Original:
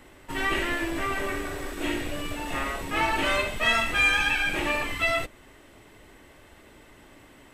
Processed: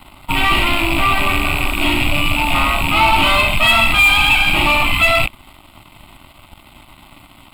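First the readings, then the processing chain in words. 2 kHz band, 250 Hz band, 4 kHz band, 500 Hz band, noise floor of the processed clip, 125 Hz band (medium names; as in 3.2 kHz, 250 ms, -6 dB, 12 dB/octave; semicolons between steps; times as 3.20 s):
+11.5 dB, +10.0 dB, +15.0 dB, +7.5 dB, -46 dBFS, +16.0 dB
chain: rattle on loud lows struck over -47 dBFS, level -20 dBFS; waveshaping leveller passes 3; static phaser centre 1.7 kHz, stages 6; trim +7 dB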